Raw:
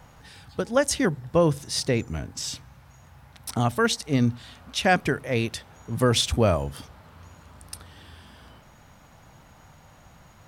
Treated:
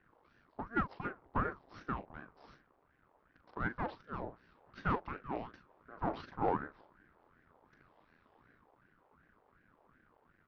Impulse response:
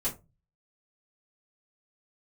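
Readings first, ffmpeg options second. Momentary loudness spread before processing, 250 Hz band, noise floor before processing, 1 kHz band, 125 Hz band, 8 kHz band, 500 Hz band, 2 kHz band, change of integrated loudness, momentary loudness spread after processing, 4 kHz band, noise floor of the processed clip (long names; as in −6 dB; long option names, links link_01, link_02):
18 LU, −16.0 dB, −53 dBFS, −8.5 dB, −18.5 dB, below −40 dB, −18.0 dB, −13.5 dB, −15.0 dB, 16 LU, −31.5 dB, −72 dBFS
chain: -filter_complex "[0:a]aresample=11025,aeval=exprs='max(val(0),0)':channel_layout=same,aresample=44100,bandpass=frequency=640:width_type=q:width=3.1:csg=0,asplit=2[link_01][link_02];[link_02]adelay=40,volume=-10.5dB[link_03];[link_01][link_03]amix=inputs=2:normalize=0,aeval=exprs='(tanh(11.2*val(0)+0.4)-tanh(0.4))/11.2':channel_layout=same,aeval=exprs='val(0)*sin(2*PI*540*n/s+540*0.75/2.7*sin(2*PI*2.7*n/s))':channel_layout=same,volume=1.5dB"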